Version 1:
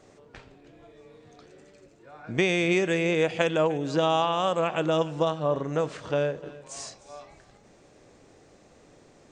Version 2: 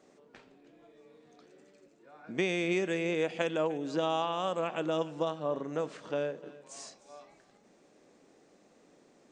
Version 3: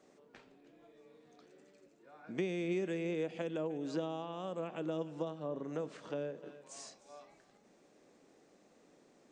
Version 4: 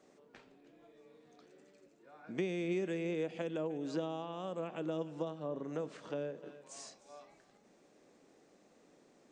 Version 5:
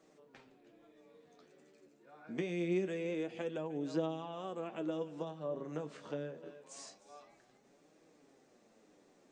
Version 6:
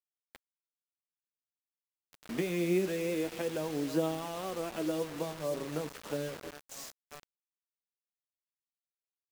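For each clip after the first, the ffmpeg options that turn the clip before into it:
-af "lowshelf=f=140:t=q:w=1.5:g=-13,volume=0.422"
-filter_complex "[0:a]acrossover=split=480[s0][s1];[s1]acompressor=threshold=0.00891:ratio=6[s2];[s0][s2]amix=inputs=2:normalize=0,volume=0.708"
-af anull
-af "flanger=delay=6:depth=8.1:regen=41:speed=0.25:shape=triangular,volume=1.41"
-af "acrusher=bits=7:mix=0:aa=0.000001,volume=1.68"

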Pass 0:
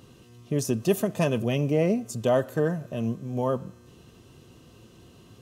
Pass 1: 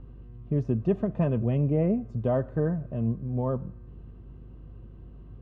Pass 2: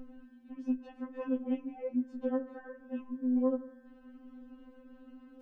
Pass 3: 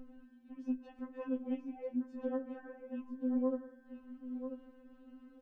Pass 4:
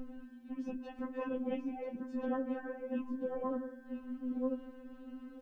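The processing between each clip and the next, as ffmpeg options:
-af "aeval=exprs='val(0)+0.00251*(sin(2*PI*50*n/s)+sin(2*PI*2*50*n/s)/2+sin(2*PI*3*50*n/s)/3+sin(2*PI*4*50*n/s)/4+sin(2*PI*5*50*n/s)/5)':c=same,lowpass=1700,aemphasis=mode=reproduction:type=bsi,volume=0.531"
-filter_complex "[0:a]acrossover=split=160[s0][s1];[s1]acompressor=threshold=0.0251:ratio=6[s2];[s0][s2]amix=inputs=2:normalize=0,asplit=2[s3][s4];[s4]alimiter=level_in=2.11:limit=0.0631:level=0:latency=1:release=13,volume=0.473,volume=0.891[s5];[s3][s5]amix=inputs=2:normalize=0,afftfilt=real='re*3.46*eq(mod(b,12),0)':imag='im*3.46*eq(mod(b,12),0)':win_size=2048:overlap=0.75,volume=0.841"
-af "aecho=1:1:989:0.335,volume=0.631"
-af "afftfilt=real='re*lt(hypot(re,im),0.141)':imag='im*lt(hypot(re,im),0.141)':win_size=1024:overlap=0.75,volume=2.37"

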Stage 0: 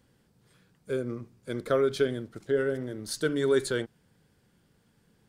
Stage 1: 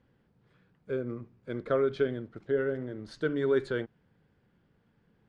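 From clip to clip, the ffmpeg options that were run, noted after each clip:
-af "lowpass=2500,volume=0.794"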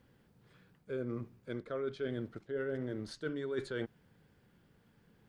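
-af "highshelf=f=4400:g=10,areverse,acompressor=threshold=0.0178:ratio=16,areverse,volume=1.19"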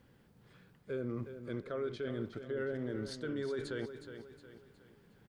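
-filter_complex "[0:a]alimiter=level_in=2.51:limit=0.0631:level=0:latency=1:release=22,volume=0.398,asplit=2[s0][s1];[s1]aecho=0:1:364|728|1092|1456:0.316|0.133|0.0558|0.0234[s2];[s0][s2]amix=inputs=2:normalize=0,volume=1.26"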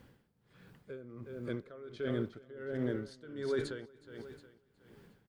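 -af "aeval=exprs='val(0)*pow(10,-18*(0.5-0.5*cos(2*PI*1.4*n/s))/20)':c=same,volume=1.88"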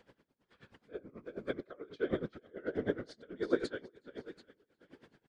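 -af "highpass=230,lowpass=6100,afftfilt=real='hypot(re,im)*cos(2*PI*random(0))':imag='hypot(re,im)*sin(2*PI*random(1))':win_size=512:overlap=0.75,aeval=exprs='val(0)*pow(10,-20*(0.5-0.5*cos(2*PI*9.3*n/s))/20)':c=same,volume=4.22"

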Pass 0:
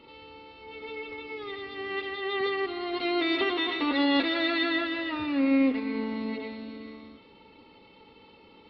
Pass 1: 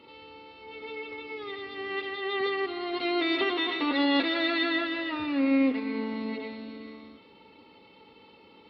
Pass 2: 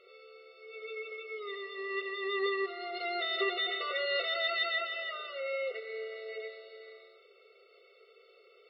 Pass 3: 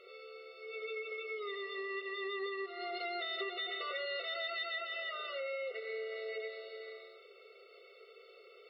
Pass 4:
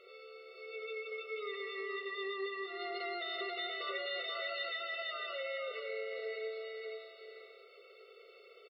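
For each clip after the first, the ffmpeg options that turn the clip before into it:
-af "highpass=f=110:p=1"
-af "afftfilt=real='re*eq(mod(floor(b*sr/1024/380),2),1)':imag='im*eq(mod(floor(b*sr/1024/380),2),1)':win_size=1024:overlap=0.75,volume=0.794"
-af "acompressor=threshold=0.00891:ratio=4,volume=1.41"
-af "aecho=1:1:485:0.631,volume=0.841"

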